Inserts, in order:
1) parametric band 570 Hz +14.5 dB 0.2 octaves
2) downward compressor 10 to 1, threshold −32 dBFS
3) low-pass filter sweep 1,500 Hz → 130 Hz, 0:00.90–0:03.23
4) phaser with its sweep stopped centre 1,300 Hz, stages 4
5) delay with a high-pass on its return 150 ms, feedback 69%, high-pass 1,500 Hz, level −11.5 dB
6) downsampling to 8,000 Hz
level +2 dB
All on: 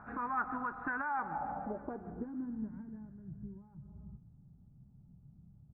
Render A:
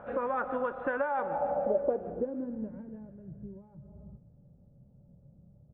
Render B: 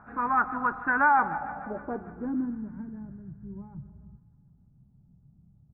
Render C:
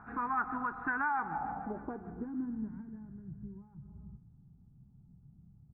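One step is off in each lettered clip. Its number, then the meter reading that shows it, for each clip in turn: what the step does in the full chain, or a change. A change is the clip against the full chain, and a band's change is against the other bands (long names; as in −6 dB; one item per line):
4, 500 Hz band +15.5 dB
2, average gain reduction 5.0 dB
1, 500 Hz band −3.5 dB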